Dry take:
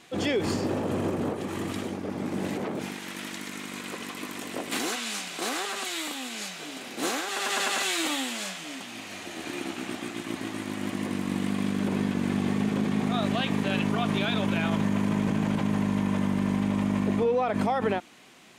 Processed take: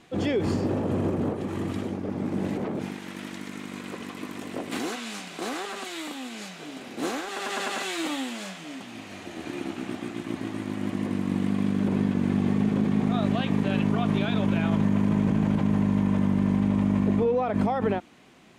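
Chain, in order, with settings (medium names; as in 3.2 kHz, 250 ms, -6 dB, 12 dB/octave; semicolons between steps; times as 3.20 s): tilt EQ -2 dB/octave; trim -1.5 dB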